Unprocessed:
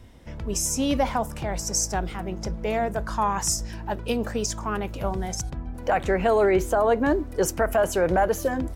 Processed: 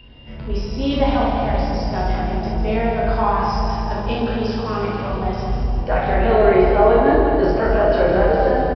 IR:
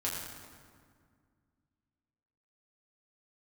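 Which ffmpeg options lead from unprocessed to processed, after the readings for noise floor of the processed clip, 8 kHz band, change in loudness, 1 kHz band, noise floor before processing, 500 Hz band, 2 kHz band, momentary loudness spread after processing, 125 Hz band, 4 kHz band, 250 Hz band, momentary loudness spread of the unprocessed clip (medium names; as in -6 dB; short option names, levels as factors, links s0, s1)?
-30 dBFS, under -20 dB, +6.5 dB, +7.0 dB, -37 dBFS, +7.0 dB, +5.0 dB, 10 LU, +9.0 dB, +2.0 dB, +6.5 dB, 11 LU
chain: -filter_complex "[0:a]aeval=exprs='val(0)+0.00891*sin(2*PI*2800*n/s)':c=same[s0];[1:a]atrim=start_sample=2205,asetrate=22491,aresample=44100[s1];[s0][s1]afir=irnorm=-1:irlink=0,aresample=11025,aresample=44100,volume=0.668"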